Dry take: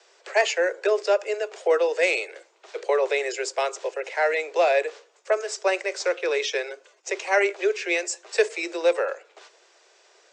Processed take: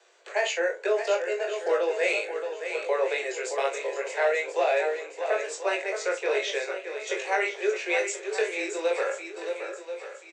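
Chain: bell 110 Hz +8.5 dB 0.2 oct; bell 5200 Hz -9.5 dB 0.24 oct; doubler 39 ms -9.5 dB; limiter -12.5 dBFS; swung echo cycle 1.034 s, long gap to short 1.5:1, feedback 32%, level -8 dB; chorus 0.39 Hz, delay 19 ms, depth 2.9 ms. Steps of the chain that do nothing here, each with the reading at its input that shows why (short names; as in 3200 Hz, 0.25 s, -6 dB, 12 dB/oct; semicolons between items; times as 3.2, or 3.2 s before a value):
bell 110 Hz: input band starts at 300 Hz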